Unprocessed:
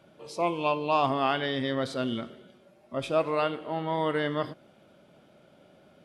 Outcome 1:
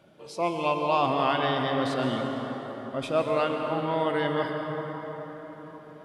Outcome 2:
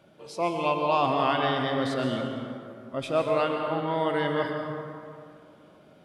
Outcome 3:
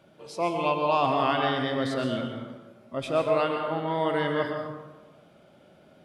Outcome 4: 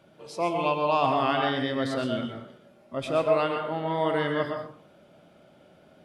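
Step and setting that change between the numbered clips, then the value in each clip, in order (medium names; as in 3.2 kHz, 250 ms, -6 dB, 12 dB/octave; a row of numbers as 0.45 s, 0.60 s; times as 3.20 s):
plate-style reverb, RT60: 5.3 s, 2.5 s, 1.2 s, 0.5 s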